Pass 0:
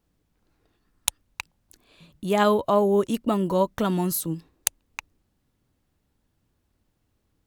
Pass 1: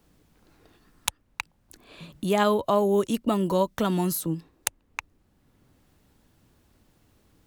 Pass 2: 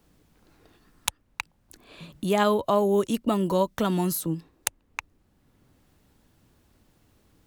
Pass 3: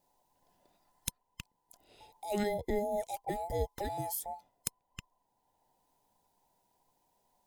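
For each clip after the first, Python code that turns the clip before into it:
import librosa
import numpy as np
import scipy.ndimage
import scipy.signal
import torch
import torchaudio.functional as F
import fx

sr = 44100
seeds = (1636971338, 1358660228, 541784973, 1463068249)

y1 = fx.band_squash(x, sr, depth_pct=40)
y1 = y1 * 10.0 ** (-1.0 / 20.0)
y2 = y1
y3 = fx.band_invert(y2, sr, width_hz=1000)
y3 = fx.peak_eq(y3, sr, hz=1600.0, db=-12.5, octaves=2.6)
y3 = y3 * 10.0 ** (-6.0 / 20.0)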